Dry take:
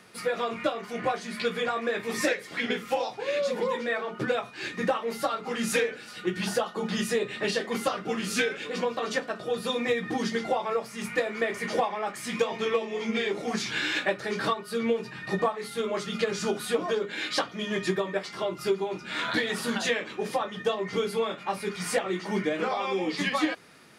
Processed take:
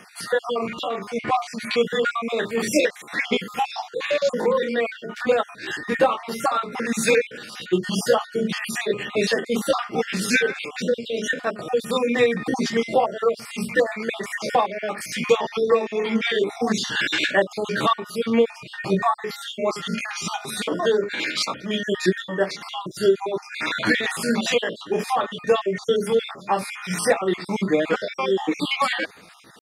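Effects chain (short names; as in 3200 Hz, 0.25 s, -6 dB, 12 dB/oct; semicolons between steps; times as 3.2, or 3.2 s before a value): random spectral dropouts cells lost 41%; tempo 0.81×; gain +8 dB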